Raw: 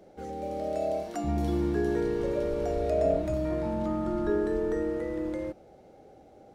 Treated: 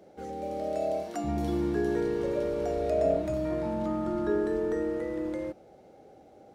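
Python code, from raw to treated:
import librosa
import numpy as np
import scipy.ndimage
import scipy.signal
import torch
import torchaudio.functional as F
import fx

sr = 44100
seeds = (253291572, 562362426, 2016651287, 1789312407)

y = fx.highpass(x, sr, hz=95.0, slope=6)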